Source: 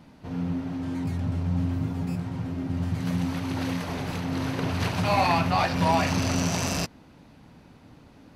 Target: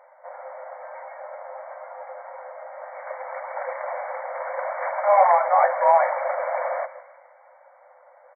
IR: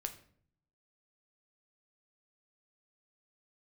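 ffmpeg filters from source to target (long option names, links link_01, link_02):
-filter_complex "[0:a]tiltshelf=frequency=670:gain=9,asplit=6[link_01][link_02][link_03][link_04][link_05][link_06];[link_02]adelay=157,afreqshift=-75,volume=-15dB[link_07];[link_03]adelay=314,afreqshift=-150,volume=-20.7dB[link_08];[link_04]adelay=471,afreqshift=-225,volume=-26.4dB[link_09];[link_05]adelay=628,afreqshift=-300,volume=-32dB[link_10];[link_06]adelay=785,afreqshift=-375,volume=-37.7dB[link_11];[link_01][link_07][link_08][link_09][link_10][link_11]amix=inputs=6:normalize=0,afftfilt=real='re*between(b*sr/4096,500,2300)':imag='im*between(b*sr/4096,500,2300)':win_size=4096:overlap=0.75,volume=9dB"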